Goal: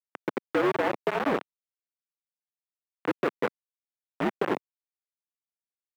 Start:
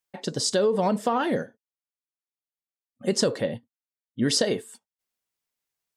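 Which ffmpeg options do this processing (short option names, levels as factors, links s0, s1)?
-filter_complex "[0:a]highpass=f=190:t=q:w=0.5412,highpass=f=190:t=q:w=1.307,lowpass=f=3500:t=q:w=0.5176,lowpass=f=3500:t=q:w=0.7071,lowpass=f=3500:t=q:w=1.932,afreqshift=-68,acrossover=split=210|830[s0][s1][s2];[s0]acompressor=threshold=0.0141:ratio=4[s3];[s1]acompressor=threshold=0.0501:ratio=4[s4];[s2]acompressor=threshold=0.00708:ratio=4[s5];[s3][s4][s5]amix=inputs=3:normalize=0,highshelf=f=2600:g=-12,asplit=2[s6][s7];[s7]acompressor=threshold=0.0178:ratio=8,volume=0.891[s8];[s6][s8]amix=inputs=2:normalize=0,acrusher=bits=3:mix=0:aa=0.000001,acrossover=split=190 2700:gain=0.0891 1 0.0794[s9][s10][s11];[s9][s10][s11]amix=inputs=3:normalize=0"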